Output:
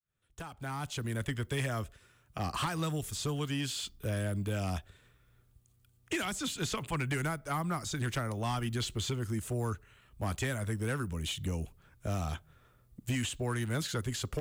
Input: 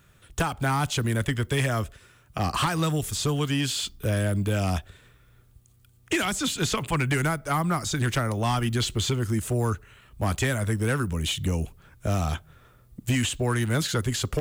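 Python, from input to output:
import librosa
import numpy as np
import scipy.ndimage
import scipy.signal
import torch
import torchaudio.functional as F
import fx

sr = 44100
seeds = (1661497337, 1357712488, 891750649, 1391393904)

y = fx.fade_in_head(x, sr, length_s=1.29)
y = y * 10.0 ** (-8.5 / 20.0)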